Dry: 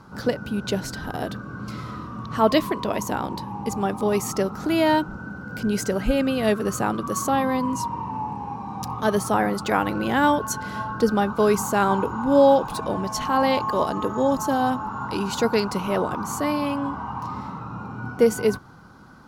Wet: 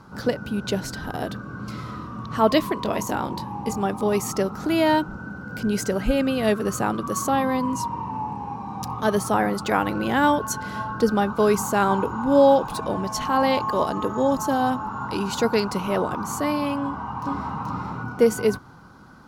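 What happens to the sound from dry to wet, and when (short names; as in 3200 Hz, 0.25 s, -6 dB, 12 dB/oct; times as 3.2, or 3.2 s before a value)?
2.83–3.76 doubler 23 ms -8.5 dB
16.83–17.6 echo throw 0.43 s, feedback 25%, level -0.5 dB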